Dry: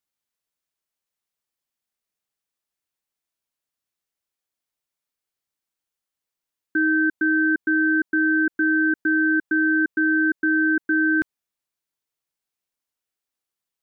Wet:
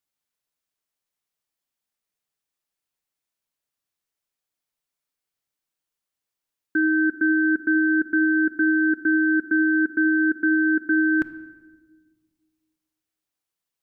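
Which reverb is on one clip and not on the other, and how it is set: simulated room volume 970 m³, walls mixed, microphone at 0.4 m

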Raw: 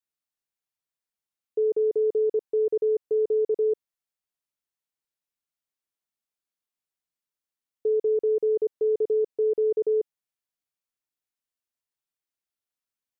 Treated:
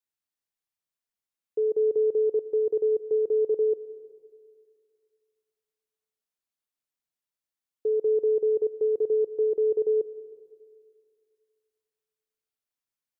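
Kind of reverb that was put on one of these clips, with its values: algorithmic reverb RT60 2.2 s, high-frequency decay 0.75×, pre-delay 105 ms, DRR 15 dB; trim -1.5 dB

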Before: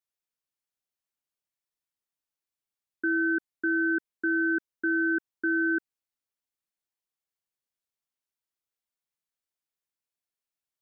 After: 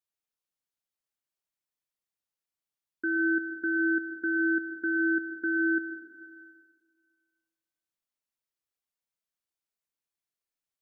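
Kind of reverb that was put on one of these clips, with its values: algorithmic reverb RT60 1.8 s, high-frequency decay 0.95×, pre-delay 65 ms, DRR 7.5 dB; trim -2.5 dB

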